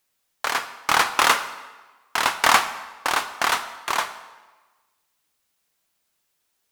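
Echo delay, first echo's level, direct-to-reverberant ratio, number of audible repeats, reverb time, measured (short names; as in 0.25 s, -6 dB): none, none, 10.0 dB, none, 1.3 s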